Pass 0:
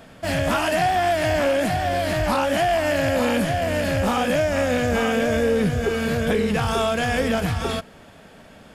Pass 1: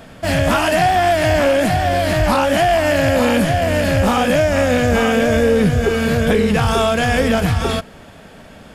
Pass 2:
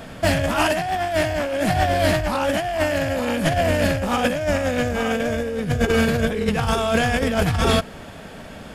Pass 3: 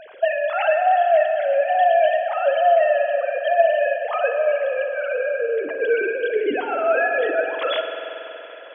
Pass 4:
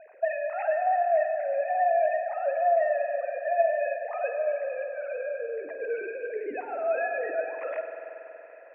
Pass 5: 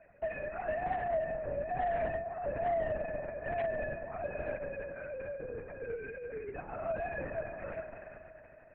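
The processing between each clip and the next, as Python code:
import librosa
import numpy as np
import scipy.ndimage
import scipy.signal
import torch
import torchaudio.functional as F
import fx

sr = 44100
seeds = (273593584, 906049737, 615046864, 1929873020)

y1 = fx.low_shelf(x, sr, hz=110.0, db=4.0)
y1 = F.gain(torch.from_numpy(y1), 5.5).numpy()
y2 = fx.over_compress(y1, sr, threshold_db=-18.0, ratio=-0.5)
y2 = F.gain(torch.from_numpy(y2), -1.5).numpy()
y3 = fx.sine_speech(y2, sr)
y3 = fx.rev_spring(y3, sr, rt60_s=3.6, pass_ms=(46,), chirp_ms=30, drr_db=5.0)
y4 = scipy.signal.sosfilt(scipy.signal.cheby1(6, 9, 2600.0, 'lowpass', fs=sr, output='sos'), y3)
y4 = F.gain(torch.from_numpy(y4), -7.0).numpy()
y5 = 10.0 ** (-14.5 / 20.0) * np.tanh(y4 / 10.0 ** (-14.5 / 20.0))
y5 = fx.lpc_vocoder(y5, sr, seeds[0], excitation='whisper', order=8)
y5 = F.gain(torch.from_numpy(y5), -8.0).numpy()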